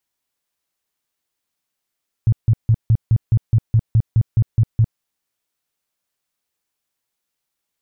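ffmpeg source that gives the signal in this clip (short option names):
-f lavfi -i "aevalsrc='0.335*sin(2*PI*112*mod(t,0.21))*lt(mod(t,0.21),6/112)':d=2.73:s=44100"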